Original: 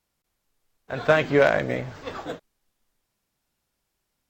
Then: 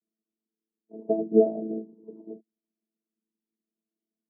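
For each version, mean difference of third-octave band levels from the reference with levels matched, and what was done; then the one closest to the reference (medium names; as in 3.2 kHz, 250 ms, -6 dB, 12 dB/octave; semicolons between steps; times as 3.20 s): 16.5 dB: vocoder on a held chord bare fifth, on A3; steep low-pass 540 Hz 36 dB/octave; upward expansion 1.5:1, over -38 dBFS; trim +5 dB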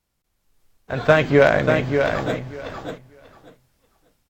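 4.0 dB: bass shelf 160 Hz +7.5 dB; level rider gain up to 8 dB; feedback delay 589 ms, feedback 17%, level -6 dB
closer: second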